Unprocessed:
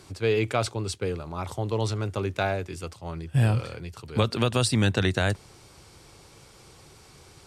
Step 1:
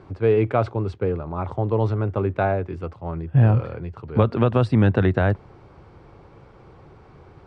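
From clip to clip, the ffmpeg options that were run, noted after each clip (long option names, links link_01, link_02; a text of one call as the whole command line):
ffmpeg -i in.wav -af "lowpass=1300,volume=6dB" out.wav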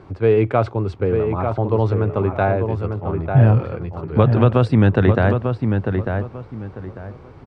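ffmpeg -i in.wav -filter_complex "[0:a]asplit=2[link_01][link_02];[link_02]adelay=896,lowpass=frequency=2300:poles=1,volume=-5.5dB,asplit=2[link_03][link_04];[link_04]adelay=896,lowpass=frequency=2300:poles=1,volume=0.26,asplit=2[link_05][link_06];[link_06]adelay=896,lowpass=frequency=2300:poles=1,volume=0.26[link_07];[link_01][link_03][link_05][link_07]amix=inputs=4:normalize=0,volume=3dB" out.wav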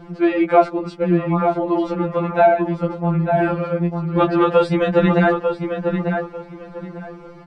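ffmpeg -i in.wav -af "afftfilt=real='re*2.83*eq(mod(b,8),0)':imag='im*2.83*eq(mod(b,8),0)':win_size=2048:overlap=0.75,volume=6.5dB" out.wav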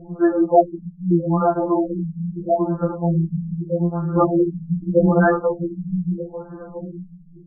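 ffmpeg -i in.wav -af "afftfilt=real='re*lt(b*sr/1024,230*pow(1800/230,0.5+0.5*sin(2*PI*0.8*pts/sr)))':imag='im*lt(b*sr/1024,230*pow(1800/230,0.5+0.5*sin(2*PI*0.8*pts/sr)))':win_size=1024:overlap=0.75" out.wav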